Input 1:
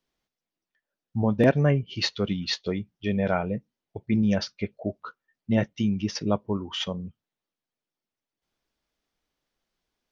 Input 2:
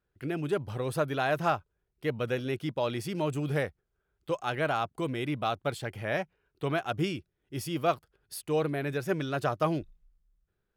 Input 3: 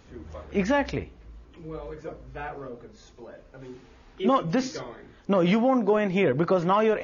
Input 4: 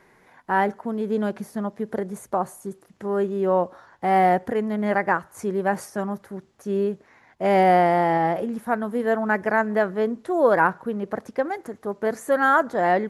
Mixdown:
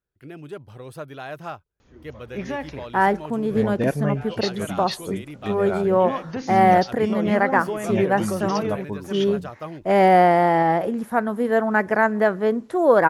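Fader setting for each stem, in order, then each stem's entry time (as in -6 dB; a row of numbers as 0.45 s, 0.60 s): -3.0 dB, -6.5 dB, -6.0 dB, +2.5 dB; 2.40 s, 0.00 s, 1.80 s, 2.45 s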